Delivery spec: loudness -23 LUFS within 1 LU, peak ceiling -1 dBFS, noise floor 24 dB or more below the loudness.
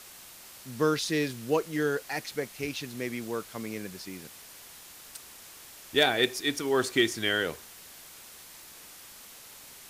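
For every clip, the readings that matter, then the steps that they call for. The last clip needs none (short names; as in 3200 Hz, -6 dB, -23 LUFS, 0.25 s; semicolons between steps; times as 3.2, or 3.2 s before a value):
noise floor -49 dBFS; noise floor target -53 dBFS; loudness -29.0 LUFS; peak -9.0 dBFS; loudness target -23.0 LUFS
-> denoiser 6 dB, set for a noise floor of -49 dBFS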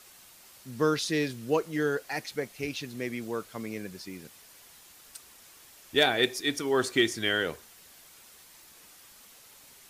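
noise floor -54 dBFS; loudness -29.0 LUFS; peak -9.0 dBFS; loudness target -23.0 LUFS
-> gain +6 dB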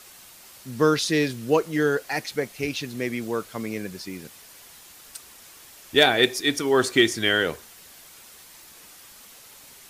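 loudness -23.0 LUFS; peak -3.0 dBFS; noise floor -48 dBFS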